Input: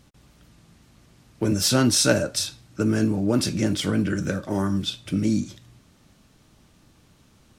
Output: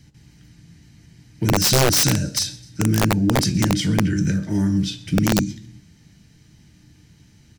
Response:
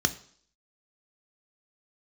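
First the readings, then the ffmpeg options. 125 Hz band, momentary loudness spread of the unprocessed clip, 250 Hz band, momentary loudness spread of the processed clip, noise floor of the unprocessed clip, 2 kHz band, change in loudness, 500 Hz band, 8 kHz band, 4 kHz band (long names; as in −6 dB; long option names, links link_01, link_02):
+6.5 dB, 9 LU, +2.5 dB, 8 LU, −58 dBFS, +3.5 dB, +3.5 dB, +0.5 dB, +4.0 dB, +3.5 dB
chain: -filter_complex "[0:a]acrossover=split=310|3000[link_01][link_02][link_03];[link_02]acompressor=threshold=-30dB:ratio=3[link_04];[link_01][link_04][link_03]amix=inputs=3:normalize=0,aecho=1:1:129|258|387:0.0841|0.0404|0.0194,asplit=2[link_05][link_06];[1:a]atrim=start_sample=2205,afade=type=out:start_time=0.28:duration=0.01,atrim=end_sample=12789,asetrate=48510,aresample=44100[link_07];[link_06][link_07]afir=irnorm=-1:irlink=0,volume=-9dB[link_08];[link_05][link_08]amix=inputs=2:normalize=0,aeval=exprs='(mod(3.16*val(0)+1,2)-1)/3.16':channel_layout=same"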